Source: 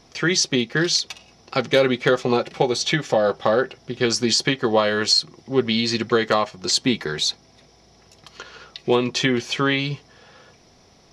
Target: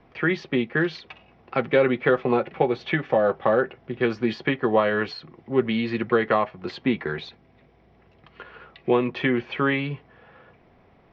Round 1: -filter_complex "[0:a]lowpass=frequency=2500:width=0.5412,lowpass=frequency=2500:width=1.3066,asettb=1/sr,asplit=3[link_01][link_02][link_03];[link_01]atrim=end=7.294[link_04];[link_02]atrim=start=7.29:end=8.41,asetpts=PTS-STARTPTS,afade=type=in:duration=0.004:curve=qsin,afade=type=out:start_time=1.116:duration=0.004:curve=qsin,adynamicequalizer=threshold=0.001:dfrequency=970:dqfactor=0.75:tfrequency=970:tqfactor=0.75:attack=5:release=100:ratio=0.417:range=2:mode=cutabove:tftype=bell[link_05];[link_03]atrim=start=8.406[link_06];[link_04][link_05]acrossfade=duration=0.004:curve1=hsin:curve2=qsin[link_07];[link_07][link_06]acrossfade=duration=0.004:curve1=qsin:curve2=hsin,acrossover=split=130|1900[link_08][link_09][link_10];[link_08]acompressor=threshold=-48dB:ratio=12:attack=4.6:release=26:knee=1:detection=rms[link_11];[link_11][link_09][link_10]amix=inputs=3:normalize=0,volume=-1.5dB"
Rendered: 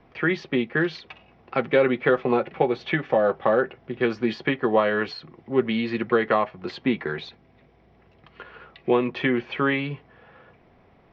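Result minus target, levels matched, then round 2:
downward compressor: peak gain reduction +8 dB
-filter_complex "[0:a]lowpass=frequency=2500:width=0.5412,lowpass=frequency=2500:width=1.3066,asettb=1/sr,asplit=3[link_01][link_02][link_03];[link_01]atrim=end=7.294[link_04];[link_02]atrim=start=7.29:end=8.41,asetpts=PTS-STARTPTS,afade=type=in:duration=0.004:curve=qsin,afade=type=out:start_time=1.116:duration=0.004:curve=qsin,adynamicequalizer=threshold=0.001:dfrequency=970:dqfactor=0.75:tfrequency=970:tqfactor=0.75:attack=5:release=100:ratio=0.417:range=2:mode=cutabove:tftype=bell[link_05];[link_03]atrim=start=8.406[link_06];[link_04][link_05]acrossfade=duration=0.004:curve1=hsin:curve2=qsin[link_07];[link_07][link_06]acrossfade=duration=0.004:curve1=qsin:curve2=hsin,acrossover=split=130|1900[link_08][link_09][link_10];[link_08]acompressor=threshold=-39dB:ratio=12:attack=4.6:release=26:knee=1:detection=rms[link_11];[link_11][link_09][link_10]amix=inputs=3:normalize=0,volume=-1.5dB"

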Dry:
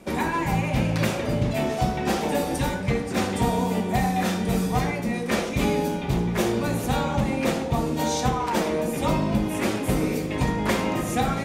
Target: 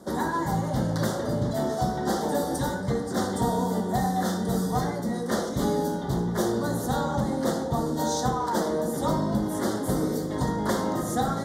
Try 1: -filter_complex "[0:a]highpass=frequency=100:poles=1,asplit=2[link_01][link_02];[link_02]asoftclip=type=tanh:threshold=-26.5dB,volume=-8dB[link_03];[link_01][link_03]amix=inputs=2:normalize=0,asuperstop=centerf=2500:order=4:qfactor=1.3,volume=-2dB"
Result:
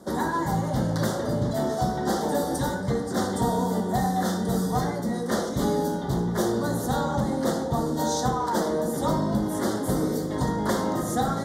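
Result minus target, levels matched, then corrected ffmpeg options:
soft clipping: distortion −5 dB
-filter_complex "[0:a]highpass=frequency=100:poles=1,asplit=2[link_01][link_02];[link_02]asoftclip=type=tanh:threshold=-36dB,volume=-8dB[link_03];[link_01][link_03]amix=inputs=2:normalize=0,asuperstop=centerf=2500:order=4:qfactor=1.3,volume=-2dB"

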